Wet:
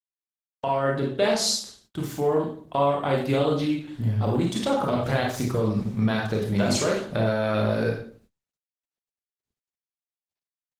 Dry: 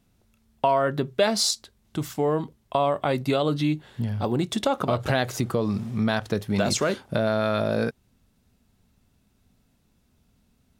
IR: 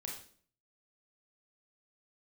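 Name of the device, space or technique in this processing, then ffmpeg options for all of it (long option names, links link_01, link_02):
speakerphone in a meeting room: -filter_complex "[1:a]atrim=start_sample=2205[link_01];[0:a][link_01]afir=irnorm=-1:irlink=0,dynaudnorm=framelen=490:gausssize=3:maxgain=5dB,agate=range=-42dB:threshold=-52dB:ratio=16:detection=peak,volume=-2.5dB" -ar 48000 -c:a libopus -b:a 16k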